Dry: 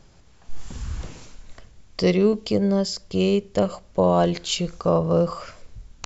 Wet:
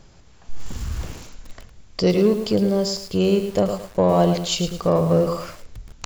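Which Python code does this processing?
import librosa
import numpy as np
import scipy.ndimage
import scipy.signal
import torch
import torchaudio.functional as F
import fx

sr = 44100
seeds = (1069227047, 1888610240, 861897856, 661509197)

p1 = fx.dynamic_eq(x, sr, hz=1900.0, q=1.5, threshold_db=-41.0, ratio=4.0, max_db=-5)
p2 = 10.0 ** (-22.5 / 20.0) * np.tanh(p1 / 10.0 ** (-22.5 / 20.0))
p3 = p1 + (p2 * librosa.db_to_amplitude(-7.5))
y = fx.echo_crushed(p3, sr, ms=109, feedback_pct=35, bits=6, wet_db=-8)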